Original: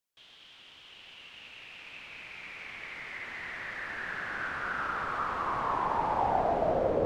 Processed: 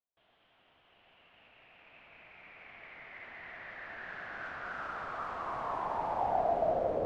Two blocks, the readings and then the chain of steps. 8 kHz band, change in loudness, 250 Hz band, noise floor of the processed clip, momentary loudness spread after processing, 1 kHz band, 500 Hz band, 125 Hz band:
under -10 dB, -3.5 dB, -7.5 dB, -70 dBFS, 21 LU, -4.0 dB, -2.5 dB, -7.5 dB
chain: low-pass opened by the level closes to 1400 Hz, open at -27 dBFS; bell 680 Hz +8 dB 0.43 oct; gain -7.5 dB

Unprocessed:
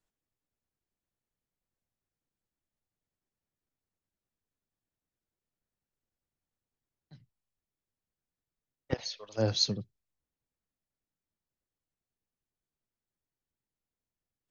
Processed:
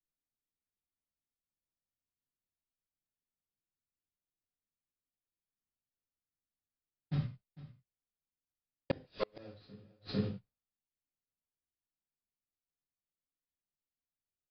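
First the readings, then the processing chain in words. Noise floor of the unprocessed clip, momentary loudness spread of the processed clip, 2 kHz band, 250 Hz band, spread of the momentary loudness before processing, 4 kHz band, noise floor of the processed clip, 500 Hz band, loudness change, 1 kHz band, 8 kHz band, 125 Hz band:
under -85 dBFS, 18 LU, -3.5 dB, -1.0 dB, 11 LU, -17.5 dB, under -85 dBFS, -5.0 dB, -8.0 dB, -3.0 dB, n/a, -1.5 dB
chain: median filter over 41 samples; expander -58 dBFS; high shelf 4300 Hz +8.5 dB; in parallel at +1.5 dB: compressor 6:1, threshold -39 dBFS, peak gain reduction 14 dB; on the sum: short-mantissa float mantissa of 2-bit; downsampling 11025 Hz; on a send: echo 0.451 s -17.5 dB; on the sum: non-linear reverb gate 0.14 s falling, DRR -6 dB; flipped gate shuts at -29 dBFS, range -38 dB; gain +9 dB

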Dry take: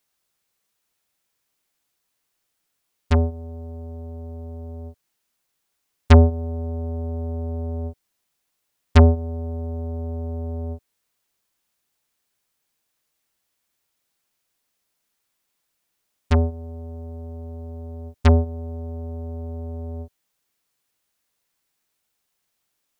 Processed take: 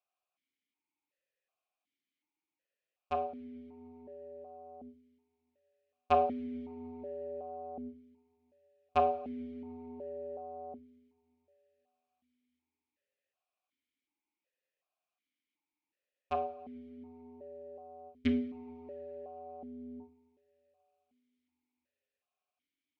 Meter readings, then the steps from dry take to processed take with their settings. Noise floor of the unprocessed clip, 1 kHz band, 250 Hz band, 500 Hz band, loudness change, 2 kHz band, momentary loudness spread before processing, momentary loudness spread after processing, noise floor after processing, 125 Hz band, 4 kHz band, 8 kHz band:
-76 dBFS, -2.0 dB, -12.5 dB, -9.5 dB, -15.0 dB, -15.0 dB, 20 LU, 21 LU, under -85 dBFS, -34.0 dB, -15.0 dB, n/a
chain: two-slope reverb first 0.46 s, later 3.7 s, from -20 dB, DRR 6.5 dB; vowel sequencer 2.7 Hz

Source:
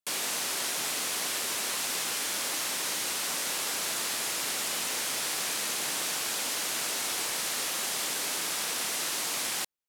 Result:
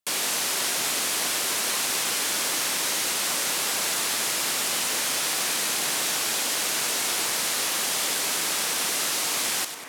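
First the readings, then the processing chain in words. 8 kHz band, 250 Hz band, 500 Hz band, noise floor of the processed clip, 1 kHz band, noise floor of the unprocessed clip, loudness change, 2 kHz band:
+5.5 dB, +5.5 dB, +5.5 dB, -27 dBFS, +5.5 dB, -32 dBFS, +5.5 dB, +5.5 dB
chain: split-band echo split 2300 Hz, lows 0.46 s, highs 97 ms, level -9.5 dB; gain +5 dB

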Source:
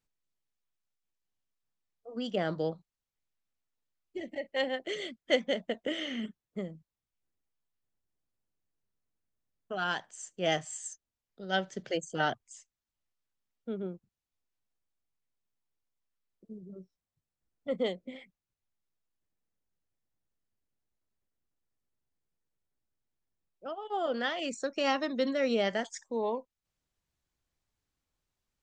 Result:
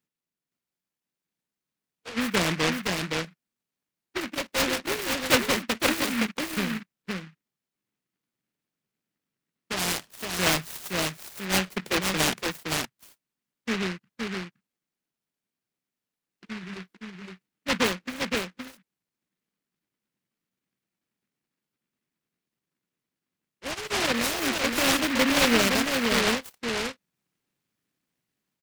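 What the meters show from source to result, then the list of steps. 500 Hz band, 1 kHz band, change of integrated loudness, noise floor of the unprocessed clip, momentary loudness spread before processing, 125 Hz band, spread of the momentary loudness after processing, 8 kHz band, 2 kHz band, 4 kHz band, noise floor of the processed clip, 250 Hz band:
+3.0 dB, +6.5 dB, +7.5 dB, under -85 dBFS, 18 LU, +10.0 dB, 16 LU, +15.5 dB, +11.0 dB, +11.5 dB, under -85 dBFS, +9.0 dB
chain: HPF 160 Hz 24 dB/oct; low shelf 370 Hz +8.5 dB; AGC gain up to 3 dB; echo 0.517 s -4 dB; noise-modulated delay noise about 1800 Hz, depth 0.34 ms

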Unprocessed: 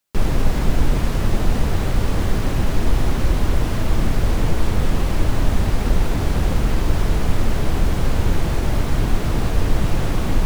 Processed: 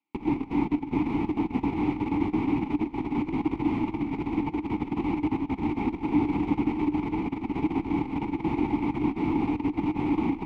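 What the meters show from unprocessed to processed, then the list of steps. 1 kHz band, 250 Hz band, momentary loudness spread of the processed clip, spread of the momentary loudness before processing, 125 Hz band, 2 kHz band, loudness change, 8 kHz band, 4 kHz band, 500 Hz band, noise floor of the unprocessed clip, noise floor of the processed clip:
-3.5 dB, +1.5 dB, 3 LU, 1 LU, -14.5 dB, -9.0 dB, -6.0 dB, under -30 dB, under -15 dB, -7.0 dB, -21 dBFS, -41 dBFS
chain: tracing distortion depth 0.26 ms; tone controls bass +1 dB, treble -8 dB; negative-ratio compressor -16 dBFS, ratio -0.5; vowel filter u; gain +8.5 dB

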